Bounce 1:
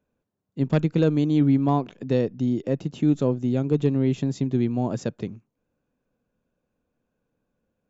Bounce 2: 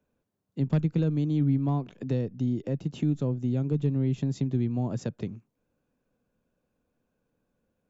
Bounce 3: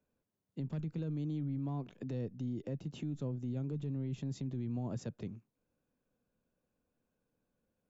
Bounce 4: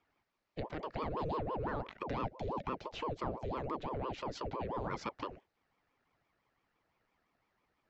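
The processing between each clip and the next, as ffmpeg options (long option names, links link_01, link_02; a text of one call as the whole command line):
ffmpeg -i in.wav -filter_complex "[0:a]acrossover=split=190[link_01][link_02];[link_02]acompressor=threshold=-34dB:ratio=3[link_03];[link_01][link_03]amix=inputs=2:normalize=0" out.wav
ffmpeg -i in.wav -af "alimiter=level_in=0.5dB:limit=-24dB:level=0:latency=1:release=12,volume=-0.5dB,volume=-6.5dB" out.wav
ffmpeg -i in.wav -af "highpass=440,equalizer=frequency=540:width_type=q:width=4:gain=-6,equalizer=frequency=810:width_type=q:width=4:gain=-10,equalizer=frequency=1700:width_type=q:width=4:gain=6,equalizer=frequency=3200:width_type=q:width=4:gain=-7,lowpass=frequency=4600:width=0.5412,lowpass=frequency=4600:width=1.3066,aeval=exprs='val(0)*sin(2*PI*470*n/s+470*0.7/5.9*sin(2*PI*5.9*n/s))':channel_layout=same,volume=14.5dB" out.wav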